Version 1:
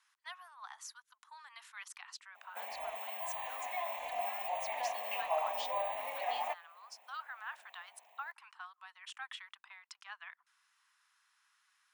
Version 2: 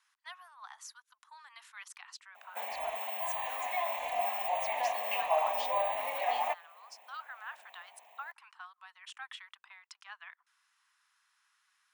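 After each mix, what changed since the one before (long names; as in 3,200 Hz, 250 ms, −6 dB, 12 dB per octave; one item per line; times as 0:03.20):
background +5.0 dB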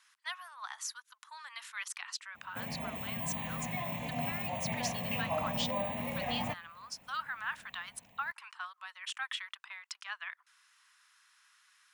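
background −11.0 dB
master: remove four-pole ladder high-pass 610 Hz, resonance 45%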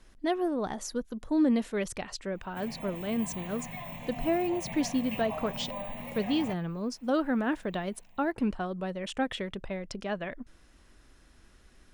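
speech: remove Butterworth high-pass 1,000 Hz 48 dB per octave
background −3.5 dB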